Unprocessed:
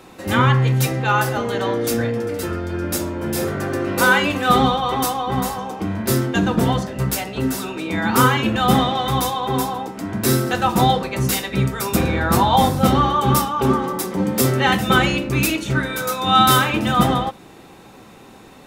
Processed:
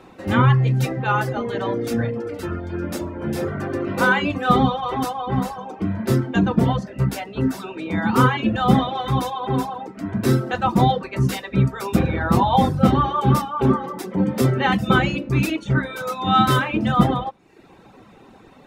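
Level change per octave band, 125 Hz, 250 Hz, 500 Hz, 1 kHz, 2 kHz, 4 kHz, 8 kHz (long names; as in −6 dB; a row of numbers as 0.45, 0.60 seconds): +0.5, 0.0, −2.5, −3.0, −3.5, −7.0, −12.5 decibels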